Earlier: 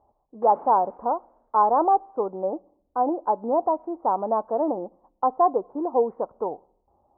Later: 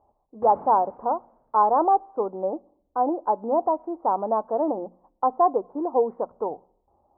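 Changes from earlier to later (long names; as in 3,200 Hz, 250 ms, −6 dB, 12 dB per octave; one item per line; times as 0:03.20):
background: remove high-pass filter 310 Hz
master: add mains-hum notches 60/120/180/240 Hz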